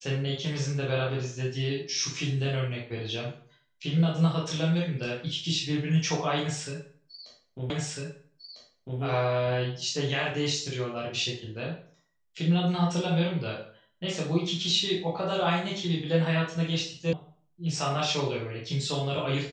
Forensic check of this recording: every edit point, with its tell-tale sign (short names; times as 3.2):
7.7 repeat of the last 1.3 s
17.13 sound cut off